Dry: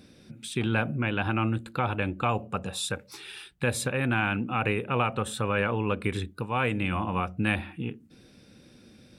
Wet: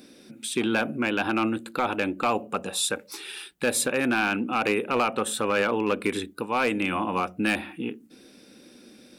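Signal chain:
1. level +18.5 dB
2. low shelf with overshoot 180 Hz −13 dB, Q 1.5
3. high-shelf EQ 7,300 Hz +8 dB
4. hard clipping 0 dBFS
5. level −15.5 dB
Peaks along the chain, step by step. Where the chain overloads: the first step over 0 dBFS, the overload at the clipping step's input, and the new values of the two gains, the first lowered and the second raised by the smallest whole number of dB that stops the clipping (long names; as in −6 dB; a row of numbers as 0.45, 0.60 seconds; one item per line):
+8.5, +7.0, +7.5, 0.0, −15.5 dBFS
step 1, 7.5 dB
step 1 +10.5 dB, step 5 −7.5 dB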